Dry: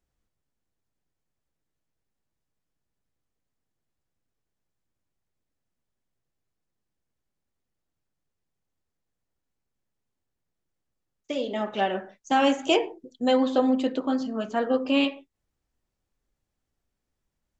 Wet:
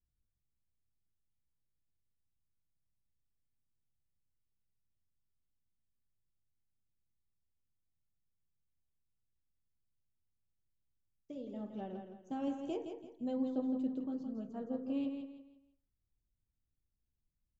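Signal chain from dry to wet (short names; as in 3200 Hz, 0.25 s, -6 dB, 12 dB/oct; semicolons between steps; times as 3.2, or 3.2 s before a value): EQ curve 110 Hz 0 dB, 2000 Hz -29 dB, 6300 Hz -23 dB; feedback echo 0.166 s, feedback 33%, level -7 dB; gain -3.5 dB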